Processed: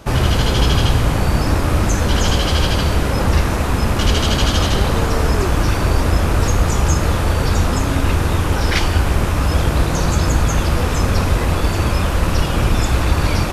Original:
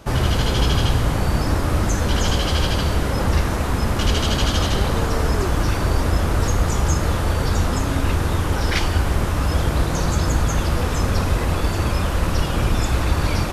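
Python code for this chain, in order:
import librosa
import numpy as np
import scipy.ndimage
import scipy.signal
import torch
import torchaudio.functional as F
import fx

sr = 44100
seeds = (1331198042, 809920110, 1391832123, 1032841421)

y = fx.rattle_buzz(x, sr, strikes_db=-24.0, level_db=-27.0)
y = y * 10.0 ** (3.5 / 20.0)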